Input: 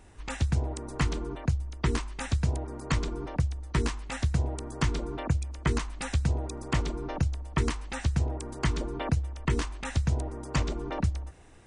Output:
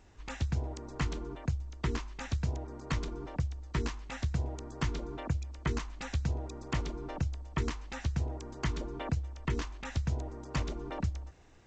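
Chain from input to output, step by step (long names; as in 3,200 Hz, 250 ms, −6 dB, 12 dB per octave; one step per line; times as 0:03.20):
level −5.5 dB
G.722 64 kbit/s 16,000 Hz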